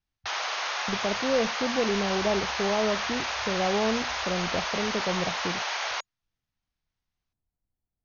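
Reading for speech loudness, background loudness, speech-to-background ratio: −30.0 LKFS, −29.5 LKFS, −0.5 dB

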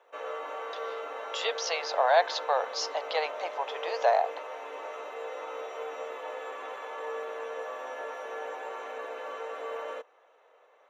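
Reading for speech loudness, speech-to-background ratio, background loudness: −29.0 LKFS, 9.5 dB, −38.5 LKFS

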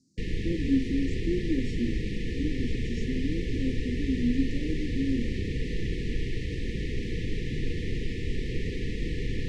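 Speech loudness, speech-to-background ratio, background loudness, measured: −32.0 LKFS, 1.5 dB, −33.5 LKFS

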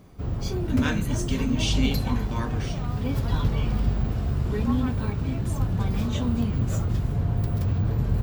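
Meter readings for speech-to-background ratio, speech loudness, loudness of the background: −4.0 dB, −30.5 LKFS, −26.5 LKFS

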